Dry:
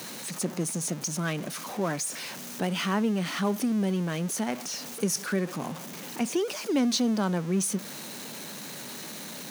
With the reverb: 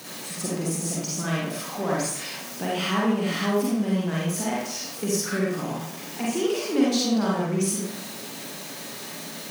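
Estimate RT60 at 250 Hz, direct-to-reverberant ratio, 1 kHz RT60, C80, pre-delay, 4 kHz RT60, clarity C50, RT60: 0.75 s, -6.0 dB, 0.70 s, 3.0 dB, 39 ms, 0.50 s, -2.0 dB, 0.70 s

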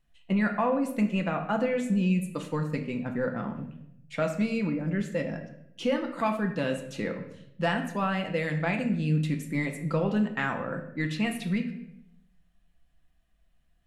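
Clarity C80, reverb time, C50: 11.5 dB, 0.80 s, 9.0 dB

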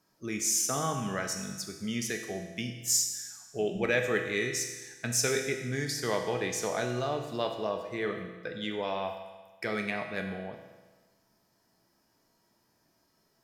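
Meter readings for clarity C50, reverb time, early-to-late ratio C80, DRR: 6.0 dB, 1.3 s, 7.5 dB, 3.0 dB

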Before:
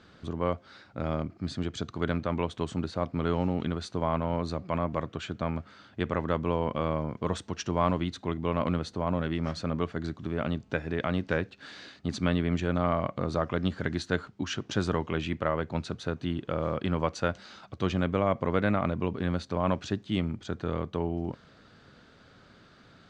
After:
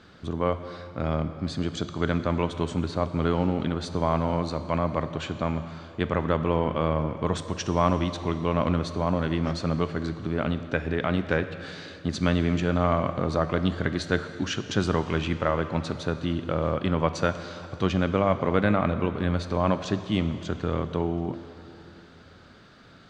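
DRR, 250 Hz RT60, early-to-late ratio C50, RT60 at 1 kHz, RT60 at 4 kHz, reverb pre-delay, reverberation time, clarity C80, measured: 10.0 dB, 2.9 s, 11.0 dB, 3.0 s, 2.7 s, 6 ms, 2.9 s, 11.5 dB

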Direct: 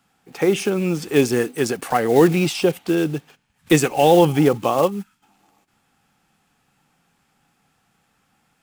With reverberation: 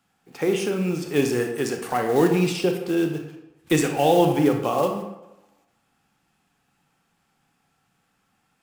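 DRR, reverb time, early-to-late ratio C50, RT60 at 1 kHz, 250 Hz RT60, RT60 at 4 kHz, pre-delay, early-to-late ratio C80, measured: 4.0 dB, 0.95 s, 6.0 dB, 0.95 s, 0.90 s, 0.60 s, 26 ms, 9.0 dB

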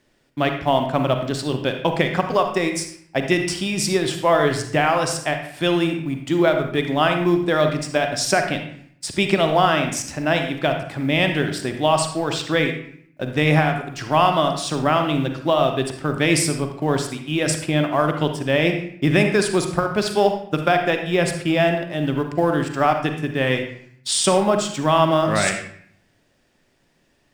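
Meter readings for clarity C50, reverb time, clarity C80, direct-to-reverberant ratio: 6.0 dB, 0.60 s, 9.0 dB, 5.0 dB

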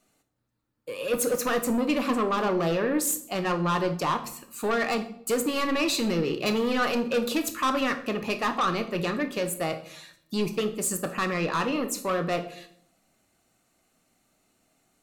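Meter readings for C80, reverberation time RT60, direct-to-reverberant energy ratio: 15.5 dB, 0.65 s, 7.0 dB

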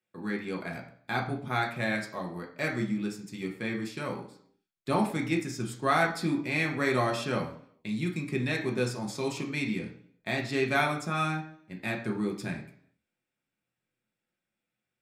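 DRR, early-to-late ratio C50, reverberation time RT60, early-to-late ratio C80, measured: -0.5 dB, 9.0 dB, 0.65 s, 13.0 dB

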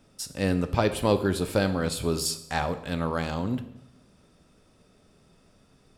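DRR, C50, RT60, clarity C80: 9.5 dB, 13.0 dB, 0.85 s, 15.5 dB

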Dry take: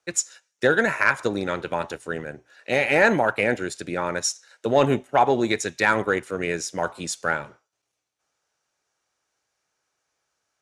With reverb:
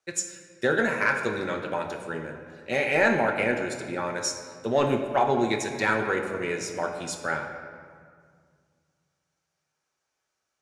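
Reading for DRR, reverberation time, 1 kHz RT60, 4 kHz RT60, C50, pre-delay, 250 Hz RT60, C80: 2.5 dB, 2.1 s, 2.0 s, 1.2 s, 6.5 dB, 5 ms, 2.5 s, 7.5 dB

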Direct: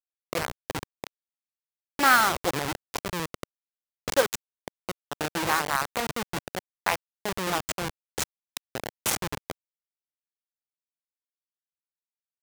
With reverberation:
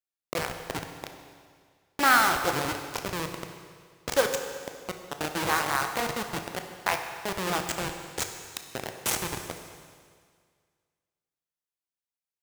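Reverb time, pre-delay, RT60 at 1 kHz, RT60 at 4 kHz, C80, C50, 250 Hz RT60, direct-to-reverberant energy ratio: 1.9 s, 21 ms, 1.9 s, 1.9 s, 7.5 dB, 6.5 dB, 1.8 s, 5.0 dB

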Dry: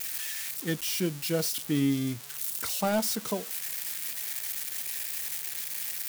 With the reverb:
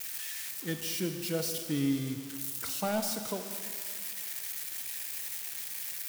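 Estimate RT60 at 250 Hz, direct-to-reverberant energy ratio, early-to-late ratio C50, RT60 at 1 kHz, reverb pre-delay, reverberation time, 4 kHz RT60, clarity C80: 2.2 s, 7.0 dB, 7.0 dB, 2.3 s, 38 ms, 2.2 s, 2.2 s, 8.0 dB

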